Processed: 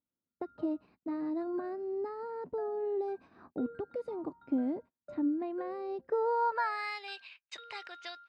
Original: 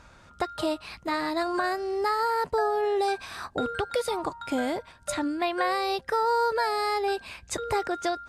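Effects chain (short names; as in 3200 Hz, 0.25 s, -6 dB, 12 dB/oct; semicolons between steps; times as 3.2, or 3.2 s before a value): gate -39 dBFS, range -31 dB; band-pass sweep 270 Hz -> 3100 Hz, 5.98–7; notch 3400 Hz, Q 11; low-pass opened by the level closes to 2600 Hz, open at -34 dBFS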